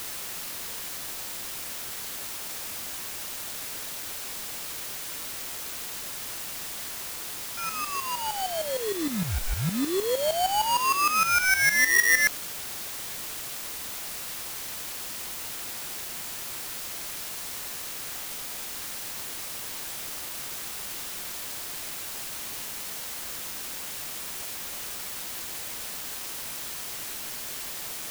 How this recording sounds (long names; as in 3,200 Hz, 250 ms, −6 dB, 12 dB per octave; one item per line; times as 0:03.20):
aliases and images of a low sample rate 3,800 Hz, jitter 0%
tremolo saw up 6.5 Hz, depth 80%
a quantiser's noise floor 8 bits, dither triangular